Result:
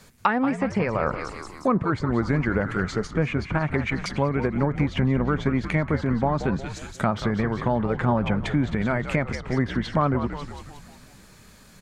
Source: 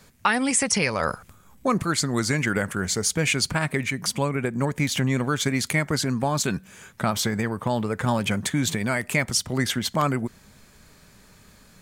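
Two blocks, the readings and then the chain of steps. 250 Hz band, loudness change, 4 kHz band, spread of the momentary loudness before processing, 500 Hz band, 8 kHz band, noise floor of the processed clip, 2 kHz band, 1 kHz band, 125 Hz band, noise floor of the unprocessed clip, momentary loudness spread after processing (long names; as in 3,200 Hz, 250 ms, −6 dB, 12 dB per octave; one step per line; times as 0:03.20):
+2.0 dB, −0.5 dB, −11.0 dB, 5 LU, +2.0 dB, −20.5 dB, −50 dBFS, −3.5 dB, +1.0 dB, +2.0 dB, −54 dBFS, 5 LU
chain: echo with shifted repeats 180 ms, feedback 54%, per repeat −76 Hz, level −10.5 dB
treble cut that deepens with the level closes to 1,300 Hz, closed at −19.5 dBFS
level +1.5 dB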